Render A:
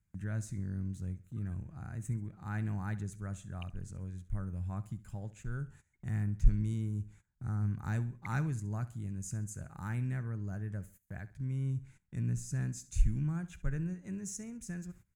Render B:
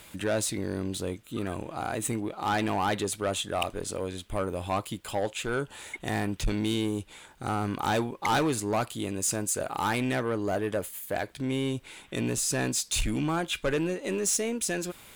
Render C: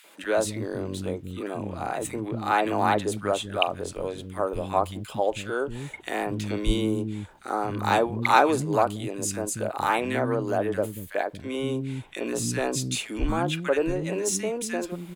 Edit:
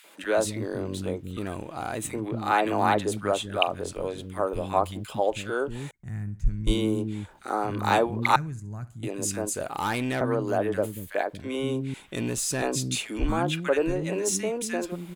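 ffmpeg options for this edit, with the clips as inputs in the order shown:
-filter_complex "[1:a]asplit=3[s0][s1][s2];[0:a]asplit=2[s3][s4];[2:a]asplit=6[s5][s6][s7][s8][s9][s10];[s5]atrim=end=1.372[s11];[s0]atrim=start=1.368:end=2.052[s12];[s6]atrim=start=2.048:end=5.912[s13];[s3]atrim=start=5.908:end=6.672[s14];[s7]atrim=start=6.668:end=8.362[s15];[s4]atrim=start=8.358:end=9.032[s16];[s8]atrim=start=9.028:end=9.552[s17];[s1]atrim=start=9.548:end=10.212[s18];[s9]atrim=start=10.208:end=11.942[s19];[s2]atrim=start=11.938:end=12.622[s20];[s10]atrim=start=12.618[s21];[s11][s12]acrossfade=d=0.004:c1=hsin:c2=hsin[s22];[s22][s13]acrossfade=d=0.004:c1=hsin:c2=hsin[s23];[s23][s14]acrossfade=d=0.004:c1=hsin:c2=hsin[s24];[s24][s15]acrossfade=d=0.004:c1=hsin:c2=hsin[s25];[s25][s16]acrossfade=d=0.004:c1=hsin:c2=hsin[s26];[s26][s17]acrossfade=d=0.004:c1=hsin:c2=hsin[s27];[s27][s18]acrossfade=d=0.004:c1=hsin:c2=hsin[s28];[s28][s19]acrossfade=d=0.004:c1=hsin:c2=hsin[s29];[s29][s20]acrossfade=d=0.004:c1=hsin:c2=hsin[s30];[s30][s21]acrossfade=d=0.004:c1=hsin:c2=hsin"

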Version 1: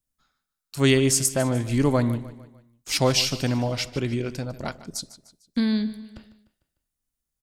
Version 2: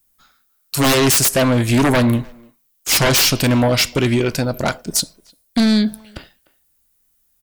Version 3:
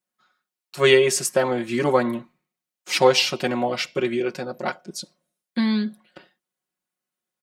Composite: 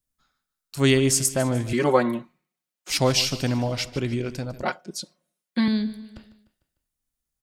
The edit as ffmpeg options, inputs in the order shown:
-filter_complex "[2:a]asplit=2[s0][s1];[0:a]asplit=3[s2][s3][s4];[s2]atrim=end=1.732[s5];[s0]atrim=start=1.728:end=2.902[s6];[s3]atrim=start=2.898:end=4.632[s7];[s1]atrim=start=4.628:end=5.682[s8];[s4]atrim=start=5.678[s9];[s5][s6]acrossfade=d=0.004:c1=hsin:c2=hsin[s10];[s10][s7]acrossfade=d=0.004:c1=hsin:c2=hsin[s11];[s11][s8]acrossfade=d=0.004:c1=hsin:c2=hsin[s12];[s12][s9]acrossfade=d=0.004:c1=hsin:c2=hsin"

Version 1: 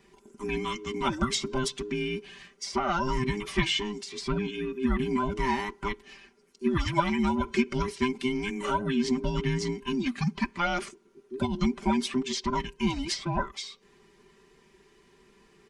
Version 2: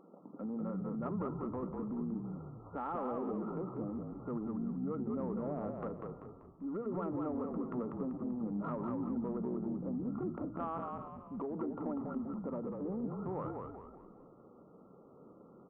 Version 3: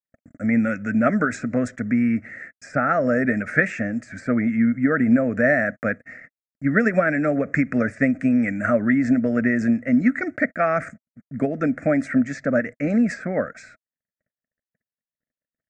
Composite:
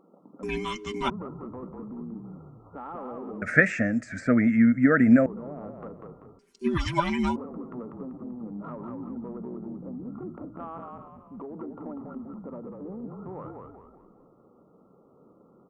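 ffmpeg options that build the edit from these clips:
-filter_complex "[0:a]asplit=2[s0][s1];[1:a]asplit=4[s2][s3][s4][s5];[s2]atrim=end=0.432[s6];[s0]atrim=start=0.428:end=1.102[s7];[s3]atrim=start=1.098:end=3.422[s8];[2:a]atrim=start=3.418:end=5.262[s9];[s4]atrim=start=5.258:end=6.392[s10];[s1]atrim=start=6.388:end=7.362[s11];[s5]atrim=start=7.358[s12];[s6][s7]acrossfade=d=0.004:c1=hsin:c2=hsin[s13];[s13][s8]acrossfade=d=0.004:c1=hsin:c2=hsin[s14];[s14][s9]acrossfade=d=0.004:c1=hsin:c2=hsin[s15];[s15][s10]acrossfade=d=0.004:c1=hsin:c2=hsin[s16];[s16][s11]acrossfade=d=0.004:c1=hsin:c2=hsin[s17];[s17][s12]acrossfade=d=0.004:c1=hsin:c2=hsin"

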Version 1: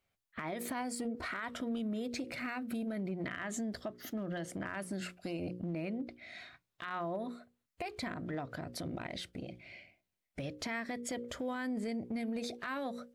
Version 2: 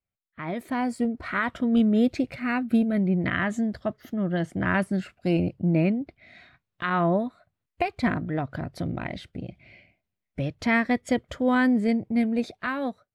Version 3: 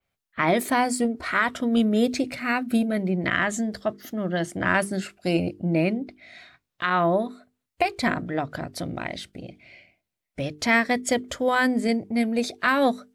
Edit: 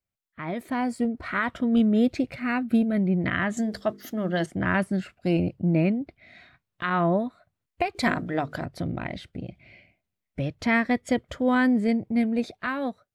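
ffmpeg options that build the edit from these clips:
-filter_complex "[2:a]asplit=2[s0][s1];[1:a]asplit=3[s2][s3][s4];[s2]atrim=end=3.572[s5];[s0]atrim=start=3.568:end=4.462[s6];[s3]atrim=start=4.458:end=7.952[s7];[s1]atrim=start=7.948:end=8.652[s8];[s4]atrim=start=8.648[s9];[s5][s6]acrossfade=d=0.004:c1=hsin:c2=hsin[s10];[s10][s7]acrossfade=d=0.004:c1=hsin:c2=hsin[s11];[s11][s8]acrossfade=d=0.004:c1=hsin:c2=hsin[s12];[s12][s9]acrossfade=d=0.004:c1=hsin:c2=hsin"

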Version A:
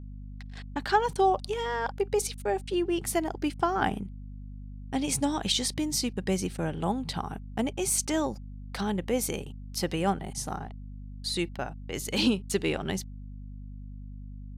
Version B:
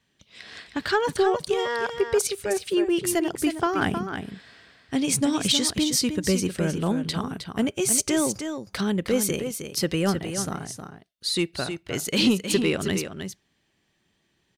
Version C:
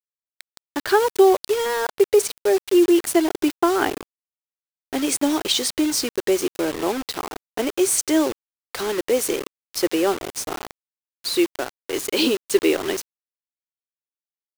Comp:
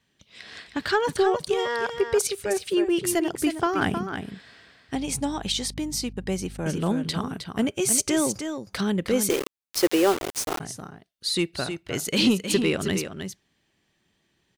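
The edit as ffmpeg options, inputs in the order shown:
-filter_complex "[1:a]asplit=3[s0][s1][s2];[s0]atrim=end=4.952[s3];[0:a]atrim=start=4.948:end=6.662[s4];[s1]atrim=start=6.658:end=9.302[s5];[2:a]atrim=start=9.298:end=10.602[s6];[s2]atrim=start=10.598[s7];[s3][s4]acrossfade=d=0.004:c1=hsin:c2=hsin[s8];[s8][s5]acrossfade=d=0.004:c1=hsin:c2=hsin[s9];[s9][s6]acrossfade=d=0.004:c1=hsin:c2=hsin[s10];[s10][s7]acrossfade=d=0.004:c1=hsin:c2=hsin"

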